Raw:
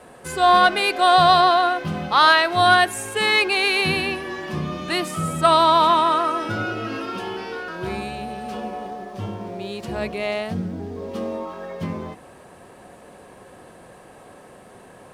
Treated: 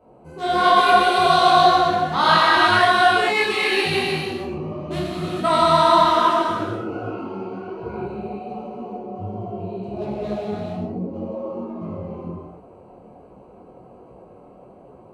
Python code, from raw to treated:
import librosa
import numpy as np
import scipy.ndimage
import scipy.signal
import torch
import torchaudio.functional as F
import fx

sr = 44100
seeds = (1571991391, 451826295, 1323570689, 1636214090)

y = fx.wiener(x, sr, points=25)
y = fx.rev_gated(y, sr, seeds[0], gate_ms=480, shape='flat', drr_db=-7.0)
y = fx.detune_double(y, sr, cents=44)
y = y * librosa.db_to_amplitude(-2.5)